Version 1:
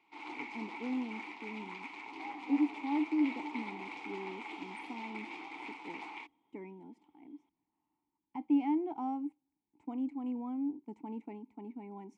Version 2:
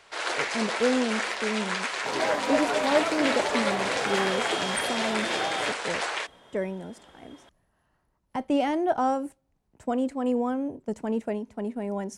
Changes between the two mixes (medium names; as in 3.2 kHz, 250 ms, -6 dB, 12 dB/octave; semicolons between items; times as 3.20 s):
first sound: add resonant low shelf 280 Hz -10.5 dB, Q 1.5; second sound +9.0 dB; master: remove vowel filter u